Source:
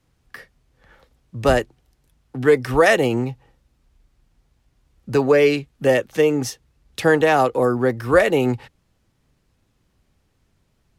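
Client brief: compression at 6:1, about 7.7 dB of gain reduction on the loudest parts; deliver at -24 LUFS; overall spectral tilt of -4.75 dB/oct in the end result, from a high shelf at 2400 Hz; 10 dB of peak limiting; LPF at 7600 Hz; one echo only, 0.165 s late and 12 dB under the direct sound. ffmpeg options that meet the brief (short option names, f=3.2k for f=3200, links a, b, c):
-af "lowpass=7.6k,highshelf=f=2.4k:g=-8,acompressor=threshold=-19dB:ratio=6,alimiter=limit=-19.5dB:level=0:latency=1,aecho=1:1:165:0.251,volume=5.5dB"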